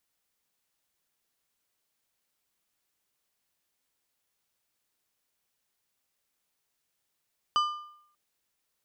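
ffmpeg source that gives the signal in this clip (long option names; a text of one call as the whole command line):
ffmpeg -f lavfi -i "aevalsrc='0.1*pow(10,-3*t/0.7)*sin(2*PI*1200*t)+0.0398*pow(10,-3*t/0.532)*sin(2*PI*3000*t)+0.0158*pow(10,-3*t/0.462)*sin(2*PI*4800*t)+0.00631*pow(10,-3*t/0.432)*sin(2*PI*6000*t)+0.00251*pow(10,-3*t/0.399)*sin(2*PI*7800*t)':duration=0.59:sample_rate=44100" out.wav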